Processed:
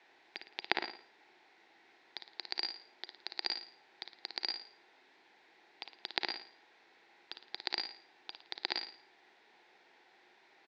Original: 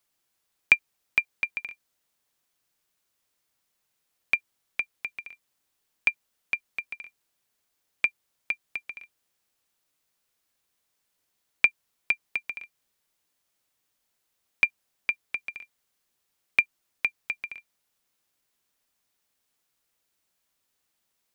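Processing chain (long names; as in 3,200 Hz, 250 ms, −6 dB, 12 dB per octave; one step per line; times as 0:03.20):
treble cut that deepens with the level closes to 500 Hz, closed at −29 dBFS
compressor whose output falls as the input rises −39 dBFS, ratio −1
background noise white −69 dBFS
repeating echo 111 ms, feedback 40%, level −7.5 dB
on a send at −17.5 dB: convolution reverb RT60 0.90 s, pre-delay 62 ms
on the sum: wrong playback speed 7.5 ips tape played at 15 ips
loudspeaker in its box 350–3,500 Hz, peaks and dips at 360 Hz +9 dB, 570 Hz −6 dB, 810 Hz +8 dB, 1,200 Hz −10 dB, 1,900 Hz +4 dB, 3,000 Hz −8 dB
level +12.5 dB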